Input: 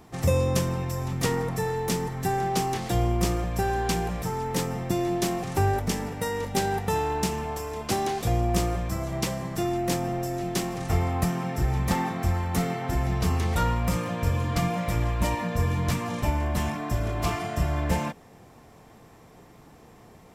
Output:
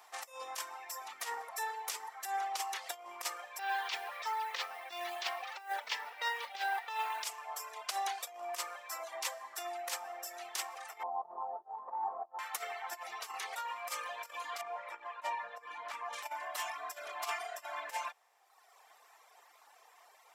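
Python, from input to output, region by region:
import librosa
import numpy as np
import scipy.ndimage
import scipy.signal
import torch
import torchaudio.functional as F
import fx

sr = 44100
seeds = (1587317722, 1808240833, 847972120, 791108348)

y = fx.chain(x, sr, fx.lowpass(hz=4100.0, slope=24),
    fx.high_shelf(hz=2100.0, db=11.0),
    fx.mod_noise(seeds[0], snr_db=26), at=(3.59, 7.24))
y = fx.chain(y, sr, fx.cheby1_lowpass(hz=970.0, order=4),
    fx.env_flatten(amount_pct=50), at=(11.03, 12.39))
y = fx.chain(y, sr, fx.lowpass(hz=3800.0, slope=6),
    fx.high_shelf(hz=2800.0, db=-9.5), at=(14.61, 16.13))
y = fx.dereverb_blind(y, sr, rt60_s=1.3)
y = fx.over_compress(y, sr, threshold_db=-28.0, ratio=-0.5)
y = scipy.signal.sosfilt(scipy.signal.butter(4, 750.0, 'highpass', fs=sr, output='sos'), y)
y = y * 10.0 ** (-3.0 / 20.0)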